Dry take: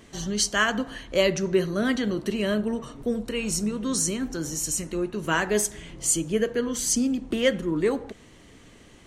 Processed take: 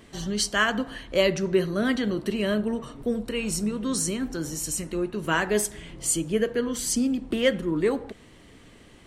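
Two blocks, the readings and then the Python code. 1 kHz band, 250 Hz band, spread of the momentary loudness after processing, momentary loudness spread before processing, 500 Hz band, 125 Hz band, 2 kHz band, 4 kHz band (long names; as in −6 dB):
0.0 dB, 0.0 dB, 7 LU, 7 LU, 0.0 dB, 0.0 dB, 0.0 dB, −0.5 dB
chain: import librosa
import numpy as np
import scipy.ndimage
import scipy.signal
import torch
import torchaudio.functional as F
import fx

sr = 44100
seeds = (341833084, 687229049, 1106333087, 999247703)

y = fx.peak_eq(x, sr, hz=6400.0, db=-6.5, octaves=0.32)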